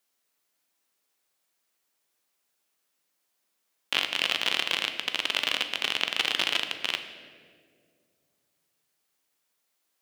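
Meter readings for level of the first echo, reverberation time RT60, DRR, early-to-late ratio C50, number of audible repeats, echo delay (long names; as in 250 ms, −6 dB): no echo audible, 2.1 s, 7.0 dB, 9.0 dB, no echo audible, no echo audible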